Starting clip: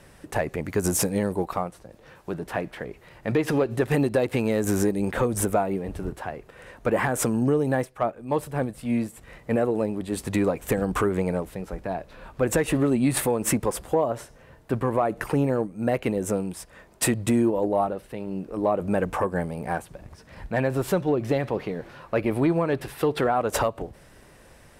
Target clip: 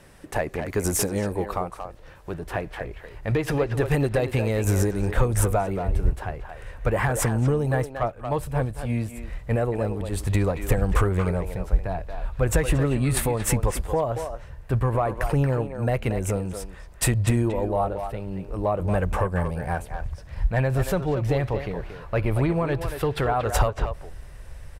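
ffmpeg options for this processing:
-filter_complex "[0:a]asubboost=boost=11.5:cutoff=73,asplit=2[s0][s1];[s1]adelay=230,highpass=300,lowpass=3400,asoftclip=type=hard:threshold=0.133,volume=0.447[s2];[s0][s2]amix=inputs=2:normalize=0"

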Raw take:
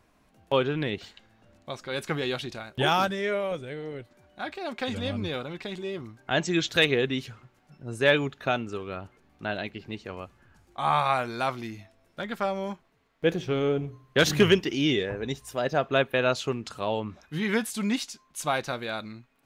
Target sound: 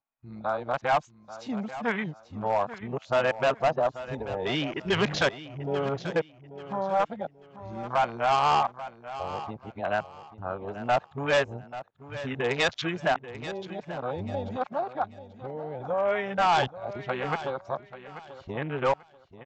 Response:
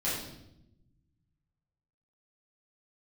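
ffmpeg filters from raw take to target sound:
-filter_complex "[0:a]areverse,agate=range=0.158:threshold=0.00158:ratio=16:detection=peak,afwtdn=0.0224,tiltshelf=f=970:g=7,asplit=2[s0][s1];[s1]acompressor=threshold=0.0178:ratio=10,volume=1.41[s2];[s0][s2]amix=inputs=2:normalize=0,lowshelf=f=530:t=q:w=1.5:g=-12.5,aresample=16000,asoftclip=type=hard:threshold=0.106,aresample=44100,aecho=1:1:837|1674|2511:0.2|0.0539|0.0145,volume=1.19"

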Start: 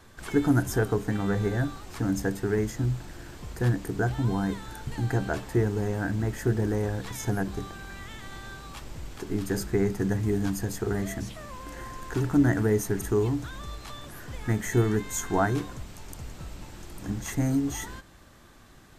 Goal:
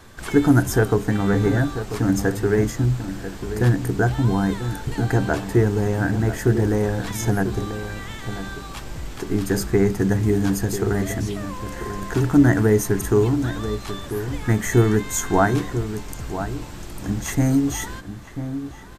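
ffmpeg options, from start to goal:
-filter_complex "[0:a]asplit=2[s0][s1];[s1]adelay=991.3,volume=0.316,highshelf=f=4000:g=-22.3[s2];[s0][s2]amix=inputs=2:normalize=0,volume=2.24"

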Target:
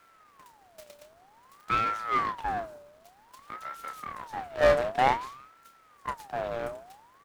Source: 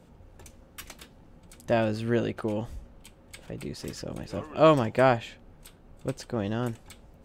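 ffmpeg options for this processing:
-filter_complex "[0:a]highpass=93,equalizer=f=450:w=1.8:g=6.5,bandreject=f=60:t=h:w=6,bandreject=f=120:t=h:w=6,bandreject=f=180:t=h:w=6,bandreject=f=240:t=h:w=6,aeval=exprs='abs(val(0))':c=same,acrusher=bits=9:mix=0:aa=0.000001,asplit=2[s0][s1];[s1]adelay=30,volume=0.355[s2];[s0][s2]amix=inputs=2:normalize=0,aecho=1:1:164|328:0.0668|0.0247,aeval=exprs='val(0)*sin(2*PI*970*n/s+970*0.4/0.53*sin(2*PI*0.53*n/s))':c=same,volume=0.631"

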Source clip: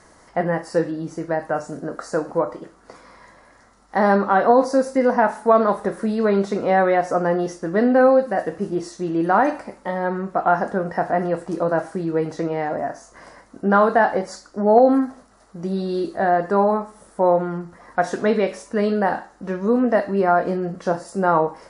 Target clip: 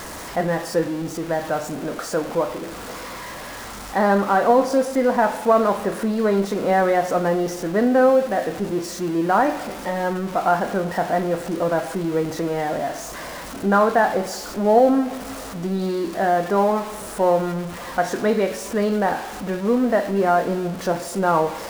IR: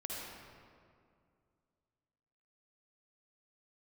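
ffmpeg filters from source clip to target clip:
-filter_complex "[0:a]aeval=exprs='val(0)+0.5*0.0422*sgn(val(0))':c=same,asplit=2[s0][s1];[1:a]atrim=start_sample=2205[s2];[s1][s2]afir=irnorm=-1:irlink=0,volume=0.15[s3];[s0][s3]amix=inputs=2:normalize=0,volume=0.75"

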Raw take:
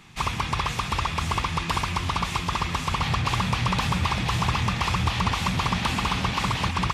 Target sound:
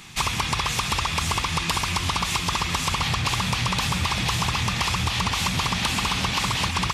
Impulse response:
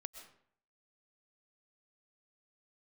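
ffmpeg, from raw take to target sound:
-af "highshelf=f=2900:g=10.5,acompressor=threshold=0.0631:ratio=6,volume=1.5"

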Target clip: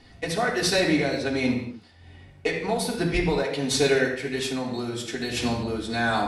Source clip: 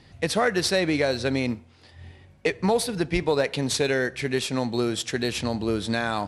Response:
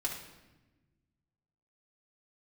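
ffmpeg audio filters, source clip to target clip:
-filter_complex "[0:a]tremolo=f=1.3:d=0.51[s0];[1:a]atrim=start_sample=2205,afade=t=out:st=0.3:d=0.01,atrim=end_sample=13671[s1];[s0][s1]afir=irnorm=-1:irlink=0,asettb=1/sr,asplit=3[s2][s3][s4];[s2]atrim=end=4.454[s5];[s3]atrim=start=4.45:end=5.37,asetpts=PTS-STARTPTS,afade=t=in:d=0.004:c=qsin,afade=t=out:st=0.916:d=0.004:c=qsin,acompressor=threshold=0.0501:ratio=5[s6];[s4]atrim=start=5.366[s7];[s5][s6]acrossfade=d=0.004:c1=hsin:c2=qsin[s8];[s8][s7]acrossfade=d=0.004:c1=qsin:c2=hsin"

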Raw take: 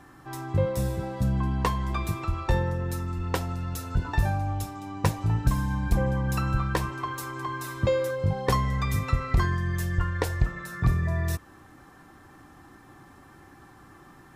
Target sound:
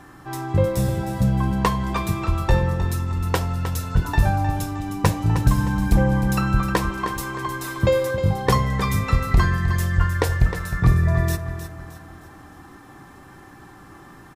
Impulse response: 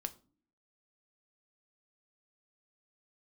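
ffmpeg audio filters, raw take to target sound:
-filter_complex "[0:a]aecho=1:1:310|620|930|1240:0.316|0.123|0.0481|0.0188,asplit=2[s0][s1];[1:a]atrim=start_sample=2205[s2];[s1][s2]afir=irnorm=-1:irlink=0,volume=1.68[s3];[s0][s3]amix=inputs=2:normalize=0,volume=0.841"

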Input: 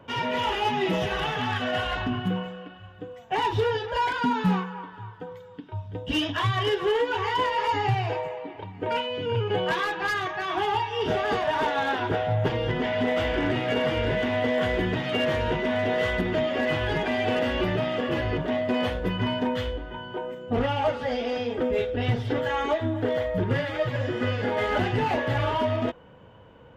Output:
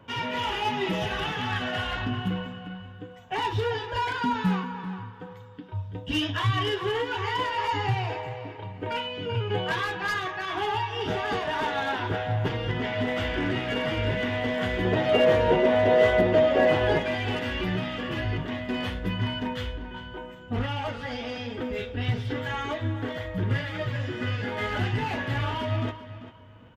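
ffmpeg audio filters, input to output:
-filter_complex "[0:a]asetnsamples=n=441:p=0,asendcmd='14.85 equalizer g 8;16.99 equalizer g -9.5',equalizer=f=560:w=0.95:g=-5,asplit=2[s0][s1];[s1]adelay=392,lowpass=f=4000:p=1,volume=0.237,asplit=2[s2][s3];[s3]adelay=392,lowpass=f=4000:p=1,volume=0.27,asplit=2[s4][s5];[s5]adelay=392,lowpass=f=4000:p=1,volume=0.27[s6];[s0][s2][s4][s6]amix=inputs=4:normalize=0,flanger=delay=9.3:depth=1.6:regen=75:speed=0.93:shape=triangular,volume=1.58"

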